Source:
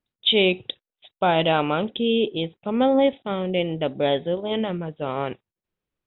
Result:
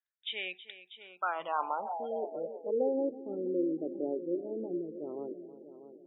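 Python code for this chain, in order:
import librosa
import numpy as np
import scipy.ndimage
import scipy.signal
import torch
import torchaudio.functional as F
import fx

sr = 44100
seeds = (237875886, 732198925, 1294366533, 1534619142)

p1 = scipy.signal.sosfilt(scipy.signal.butter(2, 150.0, 'highpass', fs=sr, output='sos'), x)
p2 = p1 + fx.echo_heads(p1, sr, ms=321, heads='first and second', feedback_pct=42, wet_db=-14.5, dry=0)
p3 = fx.filter_sweep_bandpass(p2, sr, from_hz=1700.0, to_hz=340.0, start_s=0.87, end_s=3.18, q=6.1)
y = fx.spec_gate(p3, sr, threshold_db=-25, keep='strong')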